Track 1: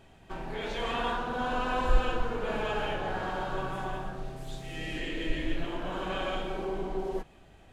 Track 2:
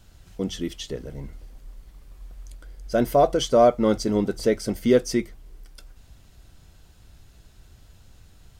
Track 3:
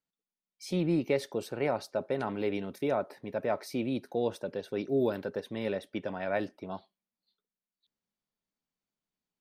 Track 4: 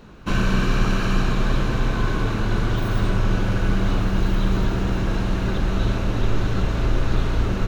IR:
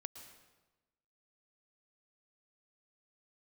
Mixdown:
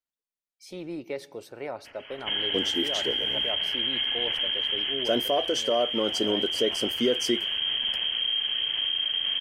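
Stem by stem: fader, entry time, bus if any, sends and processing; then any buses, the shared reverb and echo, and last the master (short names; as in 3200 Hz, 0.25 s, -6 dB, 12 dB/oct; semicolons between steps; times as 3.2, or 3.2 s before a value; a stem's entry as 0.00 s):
-6.0 dB, 1.55 s, bus B, no send, spectral gate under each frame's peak -15 dB weak
+0.5 dB, 2.15 s, bus A, no send, HPF 220 Hz 12 dB/oct; low shelf 340 Hz +6.5 dB; gate -46 dBFS, range -18 dB
-7.0 dB, 0.00 s, bus A, send -10.5 dB, dry
-7.5 dB, 2.00 s, bus B, no send, dry
bus A: 0.0 dB, bell 170 Hz -15 dB 0.81 oct; limiter -14.5 dBFS, peak gain reduction 8.5 dB
bus B: 0.0 dB, inverted band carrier 3200 Hz; limiter -21 dBFS, peak gain reduction 9.5 dB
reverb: on, RT60 1.1 s, pre-delay 0.105 s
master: vocal rider 0.5 s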